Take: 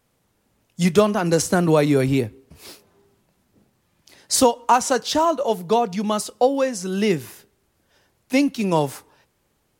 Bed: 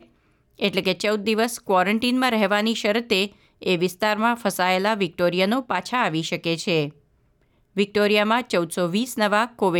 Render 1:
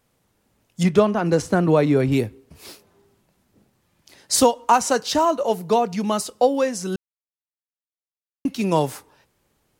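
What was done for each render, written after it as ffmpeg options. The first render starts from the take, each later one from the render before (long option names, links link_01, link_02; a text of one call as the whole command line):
ffmpeg -i in.wav -filter_complex "[0:a]asettb=1/sr,asplit=3[link_01][link_02][link_03];[link_01]atrim=end=0.834[link_04];[link_02]atrim=start=0.83:end=2.12,asetpts=PTS-STARTPTS,afade=type=in:duration=0.004:curve=qsin,afade=type=out:start_time=1.286:duration=0.004:curve=qsin,lowpass=frequency=2200:poles=1[link_05];[link_03]atrim=start=2.116[link_06];[link_04][link_05]acrossfade=duration=0.004:curve1=hsin:curve2=qsin[link_07];[link_07][link_06]acrossfade=duration=0.004:curve1=qsin:curve2=hsin,asettb=1/sr,asplit=3[link_08][link_09][link_10];[link_08]atrim=end=4.714[link_11];[link_09]atrim=start=4.71:end=6.25,asetpts=PTS-STARTPTS,afade=type=in:duration=0.004:curve=qsin,afade=type=out:start_time=1.536:duration=0.004:curve=qsin,bandreject=frequency=3400:width=15[link_12];[link_10]atrim=start=6.246[link_13];[link_11][link_12]acrossfade=duration=0.004:curve1=hsin:curve2=qsin[link_14];[link_14][link_13]acrossfade=duration=0.004:curve1=qsin:curve2=hsin,asplit=3[link_15][link_16][link_17];[link_15]atrim=end=6.96,asetpts=PTS-STARTPTS,afade=type=out:start_time=6.956:duration=0.004:curve=hsin[link_18];[link_16]atrim=start=6.96:end=8.45,asetpts=PTS-STARTPTS,volume=0[link_19];[link_17]atrim=start=8.45,asetpts=PTS-STARTPTS,afade=type=in:duration=0.004:curve=hsin[link_20];[link_18][link_19][link_20]concat=n=3:v=0:a=1" out.wav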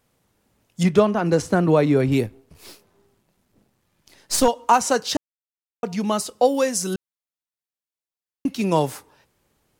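ffmpeg -i in.wav -filter_complex "[0:a]asettb=1/sr,asplit=3[link_01][link_02][link_03];[link_01]atrim=end=2.264[link_04];[link_02]atrim=start=2.26:end=4.48,asetpts=PTS-STARTPTS,afade=type=in:duration=0.004:curve=qsin,afade=type=out:start_time=2.216:duration=0.004:curve=qsin,aeval=exprs='if(lt(val(0),0),0.447*val(0),val(0))':channel_layout=same[link_05];[link_03]atrim=start=4.476[link_06];[link_04][link_05]acrossfade=duration=0.004:curve1=hsin:curve2=qsin[link_07];[link_07][link_06]acrossfade=duration=0.004:curve1=qsin:curve2=hsin,asettb=1/sr,asplit=3[link_08][link_09][link_10];[link_08]atrim=end=6.454[link_11];[link_09]atrim=start=6.45:end=6.94,asetpts=PTS-STARTPTS,afade=type=in:duration=0.004:curve=qsin,afade=type=out:start_time=0.486:duration=0.004:curve=qsin,highshelf=frequency=5600:gain=11.5[link_12];[link_10]atrim=start=6.936[link_13];[link_11][link_12]acrossfade=duration=0.004:curve1=hsin:curve2=qsin[link_14];[link_14][link_13]acrossfade=duration=0.004:curve1=qsin:curve2=hsin,asplit=3[link_15][link_16][link_17];[link_15]atrim=end=5.17,asetpts=PTS-STARTPTS,afade=type=out:start_time=5.166:duration=0.004:curve=hsin[link_18];[link_16]atrim=start=5.17:end=5.83,asetpts=PTS-STARTPTS,volume=0[link_19];[link_17]atrim=start=5.83,asetpts=PTS-STARTPTS,afade=type=in:duration=0.004:curve=hsin[link_20];[link_18][link_19][link_20]concat=n=3:v=0:a=1" out.wav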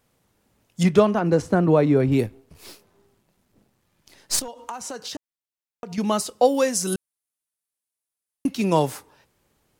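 ffmpeg -i in.wav -filter_complex "[0:a]asettb=1/sr,asplit=3[link_01][link_02][link_03];[link_01]atrim=end=1.194[link_04];[link_02]atrim=start=1.19:end=2.19,asetpts=PTS-STARTPTS,afade=type=in:duration=0.004:curve=qsin,afade=type=out:start_time=0.996:duration=0.004:curve=qsin,highshelf=frequency=2000:gain=-7.5[link_05];[link_03]atrim=start=2.186[link_06];[link_04][link_05]acrossfade=duration=0.004:curve1=hsin:curve2=qsin[link_07];[link_07][link_06]acrossfade=duration=0.004:curve1=qsin:curve2=hsin,asettb=1/sr,asplit=3[link_08][link_09][link_10];[link_08]atrim=end=4.394[link_11];[link_09]atrim=start=4.39:end=5.98,asetpts=PTS-STARTPTS,afade=type=in:duration=0.004:curve=qsin,afade=type=out:start_time=1.586:duration=0.004:curve=qsin,acompressor=threshold=-30dB:ratio=8:attack=3.2:release=140:knee=1:detection=peak[link_12];[link_10]atrim=start=5.976[link_13];[link_11][link_12]acrossfade=duration=0.004:curve1=hsin:curve2=qsin[link_14];[link_14][link_13]acrossfade=duration=0.004:curve1=qsin:curve2=hsin,asettb=1/sr,asplit=3[link_15][link_16][link_17];[link_15]atrim=end=6.874[link_18];[link_16]atrim=start=6.87:end=8.47,asetpts=PTS-STARTPTS,afade=type=in:duration=0.004:curve=qsin,afade=type=out:start_time=1.596:duration=0.004:curve=qsin,equalizer=frequency=10000:width=1.5:gain=13.5[link_19];[link_17]atrim=start=8.466[link_20];[link_18][link_19]acrossfade=duration=0.004:curve1=hsin:curve2=qsin[link_21];[link_21][link_20]acrossfade=duration=0.004:curve1=qsin:curve2=hsin" out.wav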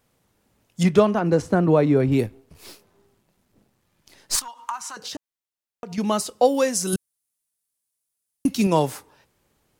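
ffmpeg -i in.wav -filter_complex "[0:a]asettb=1/sr,asplit=3[link_01][link_02][link_03];[link_01]atrim=end=4.354[link_04];[link_02]atrim=start=4.35:end=4.97,asetpts=PTS-STARTPTS,afade=type=in:duration=0.004:curve=qsin,afade=type=out:start_time=0.616:duration=0.004:curve=qsin,lowshelf=frequency=730:width_type=q:width=3:gain=-12.5[link_05];[link_03]atrim=start=4.966[link_06];[link_04][link_05]acrossfade=duration=0.004:curve1=hsin:curve2=qsin[link_07];[link_07][link_06]acrossfade=duration=0.004:curve1=qsin:curve2=hsin,asettb=1/sr,asplit=3[link_08][link_09][link_10];[link_08]atrim=end=6.934[link_11];[link_09]atrim=start=6.93:end=8.67,asetpts=PTS-STARTPTS,afade=type=in:duration=0.004:curve=qsin,afade=type=out:start_time=1.736:duration=0.004:curve=qsin,bass=frequency=250:gain=6,treble=frequency=4000:gain=7[link_12];[link_10]atrim=start=8.666[link_13];[link_11][link_12]acrossfade=duration=0.004:curve1=hsin:curve2=qsin[link_14];[link_14][link_13]acrossfade=duration=0.004:curve1=qsin:curve2=hsin" out.wav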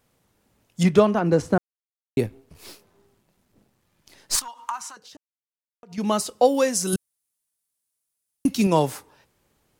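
ffmpeg -i in.wav -filter_complex "[0:a]asplit=5[link_01][link_02][link_03][link_04][link_05];[link_01]atrim=end=1.58,asetpts=PTS-STARTPTS,afade=type=out:start_time=1.576:duration=0.004:curve=hsin[link_06];[link_02]atrim=start=1.58:end=2.17,asetpts=PTS-STARTPTS,volume=0[link_07];[link_03]atrim=start=2.17:end=5,asetpts=PTS-STARTPTS,afade=type=in:duration=0.004:curve=hsin,afade=type=out:start_time=2.63:duration=0.2:silence=0.223872[link_08];[link_04]atrim=start=5:end=5.87,asetpts=PTS-STARTPTS,volume=-13dB[link_09];[link_05]atrim=start=5.87,asetpts=PTS-STARTPTS,afade=type=in:duration=0.2:silence=0.223872[link_10];[link_06][link_07][link_08][link_09][link_10]concat=n=5:v=0:a=1" out.wav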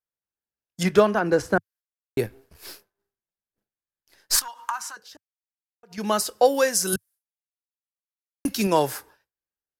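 ffmpeg -i in.wav -af "agate=range=-33dB:threshold=-45dB:ratio=3:detection=peak,equalizer=frequency=100:width_type=o:width=0.33:gain=-7,equalizer=frequency=160:width_type=o:width=0.33:gain=-9,equalizer=frequency=250:width_type=o:width=0.33:gain=-8,equalizer=frequency=1600:width_type=o:width=0.33:gain=9,equalizer=frequency=5000:width_type=o:width=0.33:gain=4,equalizer=frequency=12500:width_type=o:width=0.33:gain=10" out.wav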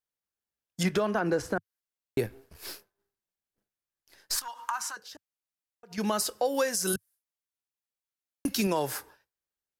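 ffmpeg -i in.wav -af "acompressor=threshold=-23dB:ratio=2,alimiter=limit=-17dB:level=0:latency=1:release=115" out.wav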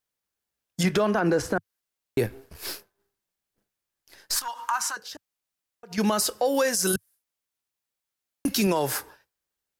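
ffmpeg -i in.wav -af "acontrast=68,alimiter=limit=-14.5dB:level=0:latency=1:release=22" out.wav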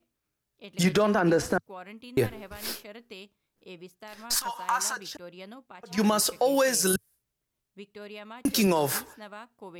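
ffmpeg -i in.wav -i bed.wav -filter_complex "[1:a]volume=-24dB[link_01];[0:a][link_01]amix=inputs=2:normalize=0" out.wav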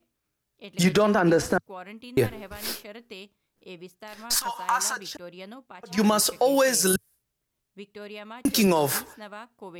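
ffmpeg -i in.wav -af "volume=2.5dB" out.wav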